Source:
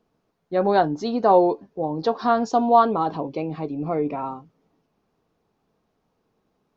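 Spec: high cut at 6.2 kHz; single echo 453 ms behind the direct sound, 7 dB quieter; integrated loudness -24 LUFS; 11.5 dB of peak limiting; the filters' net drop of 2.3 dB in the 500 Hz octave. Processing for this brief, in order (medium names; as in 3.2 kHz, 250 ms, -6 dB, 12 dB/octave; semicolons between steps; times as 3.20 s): low-pass 6.2 kHz; peaking EQ 500 Hz -3 dB; peak limiter -17.5 dBFS; delay 453 ms -7 dB; trim +4 dB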